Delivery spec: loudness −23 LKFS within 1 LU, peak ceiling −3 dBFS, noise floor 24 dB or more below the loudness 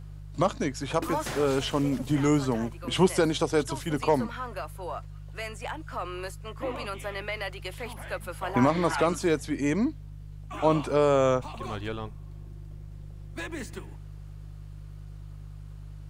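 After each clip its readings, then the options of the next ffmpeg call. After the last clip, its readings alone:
mains hum 50 Hz; hum harmonics up to 150 Hz; level of the hum −40 dBFS; integrated loudness −28.5 LKFS; sample peak −9.0 dBFS; target loudness −23.0 LKFS
→ -af "bandreject=frequency=50:width_type=h:width=4,bandreject=frequency=100:width_type=h:width=4,bandreject=frequency=150:width_type=h:width=4"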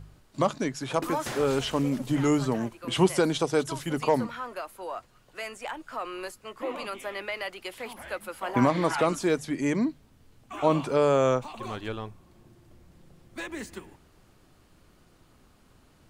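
mains hum none found; integrated loudness −28.5 LKFS; sample peak −9.0 dBFS; target loudness −23.0 LKFS
→ -af "volume=5.5dB"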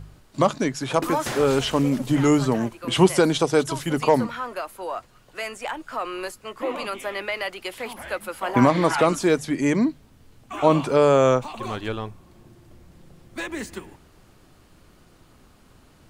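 integrated loudness −23.0 LKFS; sample peak −3.5 dBFS; background noise floor −55 dBFS

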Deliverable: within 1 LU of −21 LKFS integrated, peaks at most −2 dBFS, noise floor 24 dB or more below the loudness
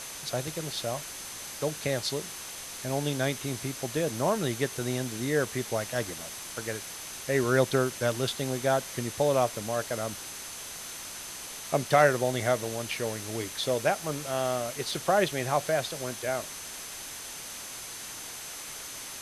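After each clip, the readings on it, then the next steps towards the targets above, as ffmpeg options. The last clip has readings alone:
interfering tone 6,200 Hz; level of the tone −46 dBFS; background noise floor −41 dBFS; target noise floor −55 dBFS; integrated loudness −30.5 LKFS; sample peak −9.0 dBFS; target loudness −21.0 LKFS
→ -af "bandreject=frequency=6200:width=30"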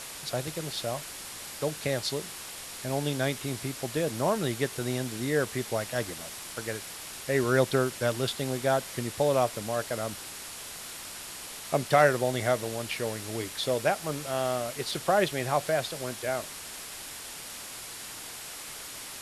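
interfering tone none found; background noise floor −42 dBFS; target noise floor −55 dBFS
→ -af "afftdn=noise_reduction=13:noise_floor=-42"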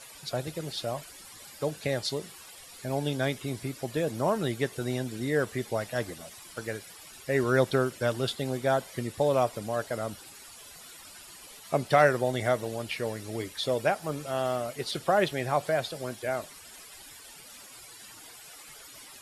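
background noise floor −49 dBFS; target noise floor −54 dBFS
→ -af "afftdn=noise_reduction=6:noise_floor=-49"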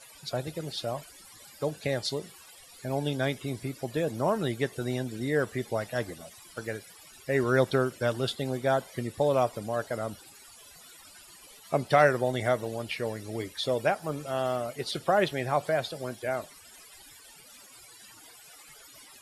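background noise floor −52 dBFS; target noise floor −54 dBFS
→ -af "afftdn=noise_reduction=6:noise_floor=-52"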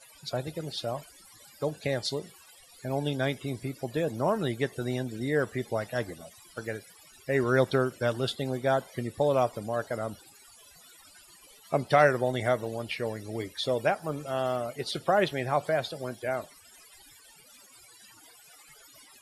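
background noise floor −55 dBFS; integrated loudness −30.0 LKFS; sample peak −9.5 dBFS; target loudness −21.0 LKFS
→ -af "volume=9dB,alimiter=limit=-2dB:level=0:latency=1"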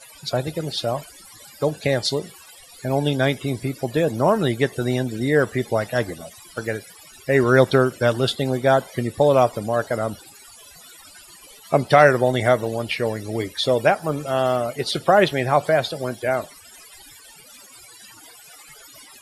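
integrated loudness −21.0 LKFS; sample peak −2.0 dBFS; background noise floor −46 dBFS

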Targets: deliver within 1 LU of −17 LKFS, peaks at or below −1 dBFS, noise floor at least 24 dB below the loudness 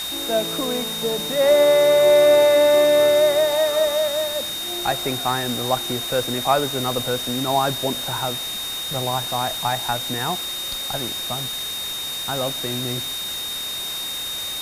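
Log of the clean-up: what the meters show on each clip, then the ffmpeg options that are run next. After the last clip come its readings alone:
interfering tone 3,700 Hz; level of the tone −27 dBFS; background noise floor −29 dBFS; target noise floor −45 dBFS; integrated loudness −20.5 LKFS; sample peak −5.0 dBFS; target loudness −17.0 LKFS
→ -af "bandreject=frequency=3700:width=30"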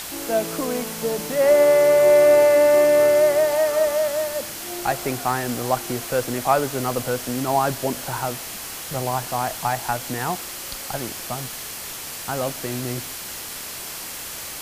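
interfering tone none found; background noise floor −34 dBFS; target noise floor −46 dBFS
→ -af "afftdn=noise_reduction=12:noise_floor=-34"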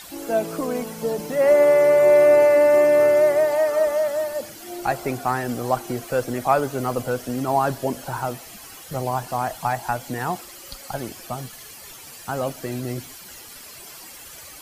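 background noise floor −42 dBFS; target noise floor −45 dBFS
→ -af "afftdn=noise_reduction=6:noise_floor=-42"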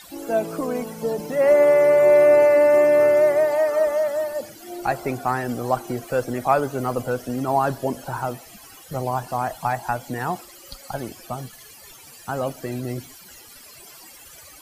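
background noise floor −45 dBFS; integrated loudness −20.5 LKFS; sample peak −6.0 dBFS; target loudness −17.0 LKFS
→ -af "volume=3.5dB"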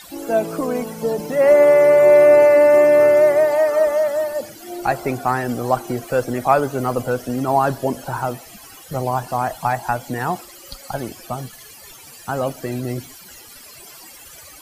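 integrated loudness −17.0 LKFS; sample peak −2.5 dBFS; background noise floor −42 dBFS

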